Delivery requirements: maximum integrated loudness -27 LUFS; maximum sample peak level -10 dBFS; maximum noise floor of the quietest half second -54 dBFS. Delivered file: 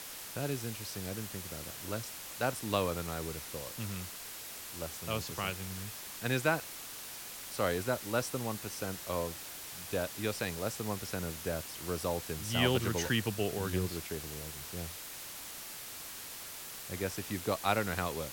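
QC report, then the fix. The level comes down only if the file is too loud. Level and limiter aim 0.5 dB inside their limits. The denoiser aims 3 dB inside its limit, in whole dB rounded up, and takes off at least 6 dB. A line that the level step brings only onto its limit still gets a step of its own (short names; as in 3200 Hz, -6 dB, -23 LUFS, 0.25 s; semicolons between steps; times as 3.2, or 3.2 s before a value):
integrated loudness -36.0 LUFS: OK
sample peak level -13.5 dBFS: OK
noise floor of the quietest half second -45 dBFS: fail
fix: denoiser 12 dB, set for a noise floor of -45 dBFS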